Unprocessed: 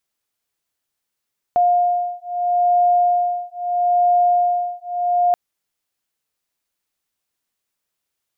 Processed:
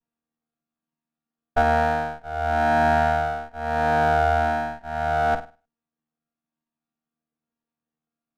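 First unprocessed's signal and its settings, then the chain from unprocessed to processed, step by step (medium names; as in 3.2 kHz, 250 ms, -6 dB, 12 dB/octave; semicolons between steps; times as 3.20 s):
beating tones 708 Hz, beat 0.77 Hz, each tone -17.5 dBFS 3.78 s
vocoder on a held chord bare fifth, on D#3; on a send: flutter echo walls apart 8.7 m, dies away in 0.32 s; on the sum: sliding maximum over 17 samples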